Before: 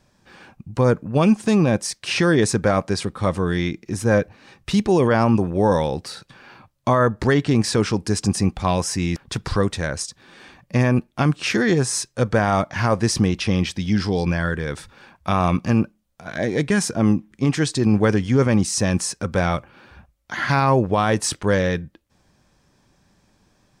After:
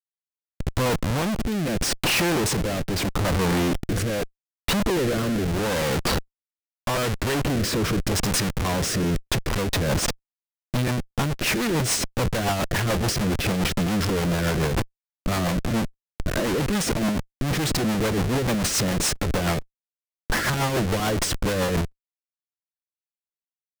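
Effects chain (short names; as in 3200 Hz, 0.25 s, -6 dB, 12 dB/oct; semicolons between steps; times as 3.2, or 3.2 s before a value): Schmitt trigger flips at -32 dBFS; rotary speaker horn 0.8 Hz, later 7 Hz, at 8.97; crackling interface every 0.23 s, samples 256, repeat, from 0.52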